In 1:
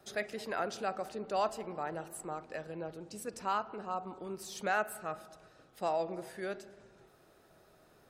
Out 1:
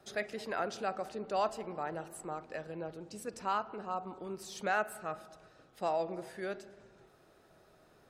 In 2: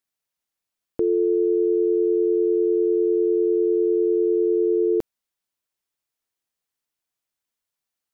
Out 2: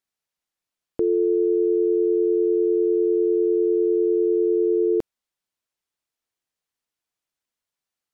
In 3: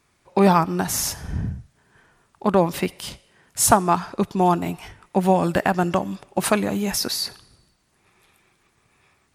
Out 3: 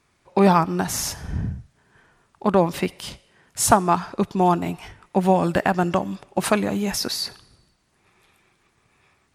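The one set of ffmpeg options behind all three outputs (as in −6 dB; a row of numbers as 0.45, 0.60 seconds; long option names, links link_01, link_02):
-af "highshelf=frequency=11000:gain=-8"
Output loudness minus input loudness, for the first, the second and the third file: 0.0, 0.0, −0.5 LU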